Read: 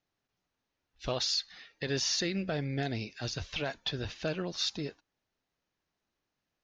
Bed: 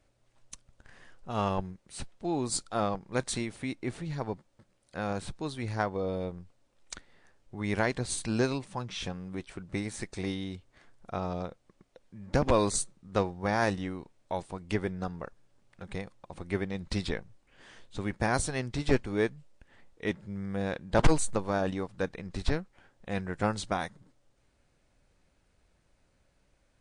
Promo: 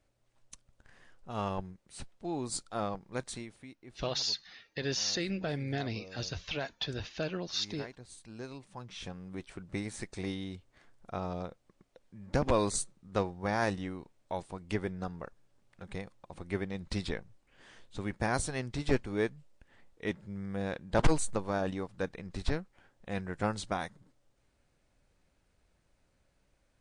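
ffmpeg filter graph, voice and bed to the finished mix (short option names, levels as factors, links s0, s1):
-filter_complex "[0:a]adelay=2950,volume=0.841[s0];[1:a]volume=3.16,afade=t=out:st=3.03:d=0.73:silence=0.223872,afade=t=in:st=8.36:d=1.14:silence=0.177828[s1];[s0][s1]amix=inputs=2:normalize=0"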